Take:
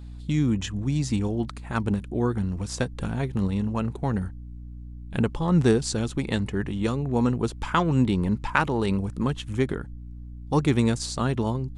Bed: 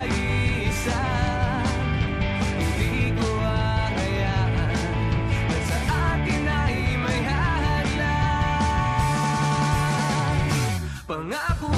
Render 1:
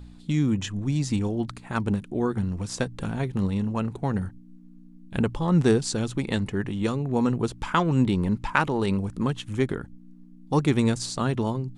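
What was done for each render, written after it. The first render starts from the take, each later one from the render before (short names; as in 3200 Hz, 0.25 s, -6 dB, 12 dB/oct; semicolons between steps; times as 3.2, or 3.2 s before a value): de-hum 60 Hz, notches 2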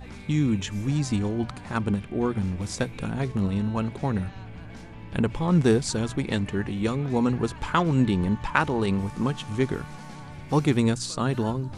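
add bed -19 dB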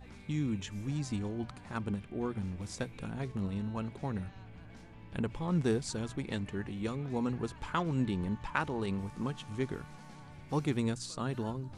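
gain -10 dB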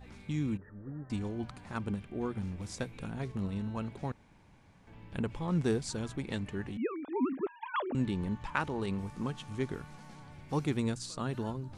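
0.57–1.1 rippled Chebyshev low-pass 1900 Hz, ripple 9 dB; 4.12–4.87 room tone; 6.77–7.95 sine-wave speech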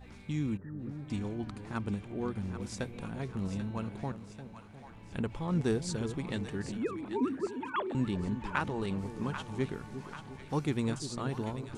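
split-band echo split 650 Hz, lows 0.352 s, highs 0.789 s, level -10 dB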